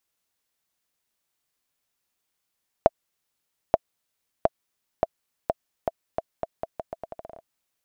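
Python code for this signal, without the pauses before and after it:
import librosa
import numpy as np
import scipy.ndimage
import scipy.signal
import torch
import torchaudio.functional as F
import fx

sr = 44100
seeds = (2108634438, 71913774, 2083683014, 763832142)

y = fx.bouncing_ball(sr, first_gap_s=0.88, ratio=0.81, hz=659.0, decay_ms=32.0, level_db=-2.5)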